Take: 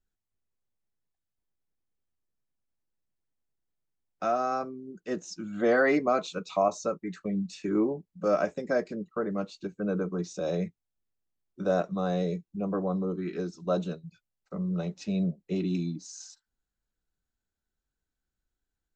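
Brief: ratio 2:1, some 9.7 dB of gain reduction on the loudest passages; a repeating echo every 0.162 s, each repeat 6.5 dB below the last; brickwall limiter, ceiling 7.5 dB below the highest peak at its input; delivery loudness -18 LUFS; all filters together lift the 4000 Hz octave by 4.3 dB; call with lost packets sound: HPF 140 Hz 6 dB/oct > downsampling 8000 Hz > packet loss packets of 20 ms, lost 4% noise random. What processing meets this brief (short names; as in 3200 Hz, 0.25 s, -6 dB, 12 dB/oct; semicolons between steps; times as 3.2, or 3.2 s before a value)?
bell 4000 Hz +5 dB; compressor 2:1, threshold -38 dBFS; limiter -28.5 dBFS; HPF 140 Hz 6 dB/oct; feedback echo 0.162 s, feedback 47%, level -6.5 dB; downsampling 8000 Hz; packet loss packets of 20 ms, lost 4% noise random; gain +21.5 dB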